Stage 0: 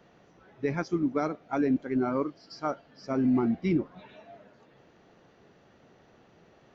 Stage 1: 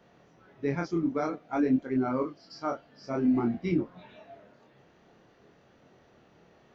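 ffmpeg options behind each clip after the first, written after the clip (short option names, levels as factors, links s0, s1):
-af "flanger=delay=22.5:depth=7.6:speed=0.52,volume=1.26"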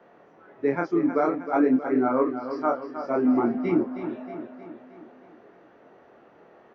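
-filter_complex "[0:a]acrossover=split=250 2100:gain=0.141 1 0.141[s0][s1][s2];[s0][s1][s2]amix=inputs=3:normalize=0,aecho=1:1:314|628|942|1256|1570|1884:0.316|0.171|0.0922|0.0498|0.0269|0.0145,volume=2.51"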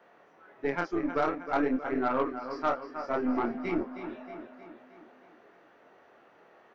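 -af "tiltshelf=f=720:g=-5.5,aeval=exprs='0.316*(cos(1*acos(clip(val(0)/0.316,-1,1)))-cos(1*PI/2))+0.02*(cos(6*acos(clip(val(0)/0.316,-1,1)))-cos(6*PI/2))':c=same,volume=0.596"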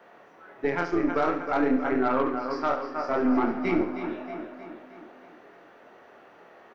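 -filter_complex "[0:a]alimiter=limit=0.0891:level=0:latency=1,asplit=2[s0][s1];[s1]aecho=0:1:70|140|210|280|350|420:0.299|0.152|0.0776|0.0396|0.0202|0.0103[s2];[s0][s2]amix=inputs=2:normalize=0,volume=2"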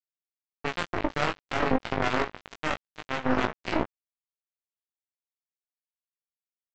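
-filter_complex "[0:a]aresample=16000,acrusher=bits=2:mix=0:aa=0.5,aresample=44100,asplit=2[s0][s1];[s1]adelay=19,volume=0.562[s2];[s0][s2]amix=inputs=2:normalize=0"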